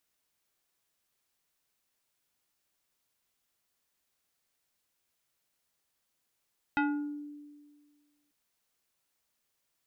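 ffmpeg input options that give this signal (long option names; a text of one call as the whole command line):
ffmpeg -f lavfi -i "aevalsrc='0.0668*pow(10,-3*t/1.69)*sin(2*PI*293*t+1.6*pow(10,-3*t/0.65)*sin(2*PI*3.89*293*t))':duration=1.54:sample_rate=44100" out.wav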